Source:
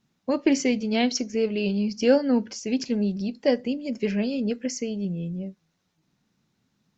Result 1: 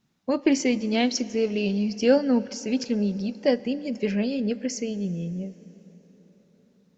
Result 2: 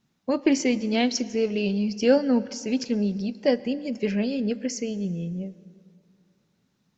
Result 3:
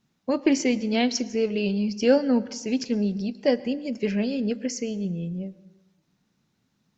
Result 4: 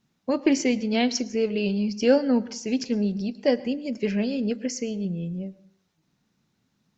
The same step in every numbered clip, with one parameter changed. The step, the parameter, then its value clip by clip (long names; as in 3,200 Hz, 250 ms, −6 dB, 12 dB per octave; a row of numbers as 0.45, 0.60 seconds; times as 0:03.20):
dense smooth reverb, RT60: 5.1, 2.4, 1.1, 0.54 seconds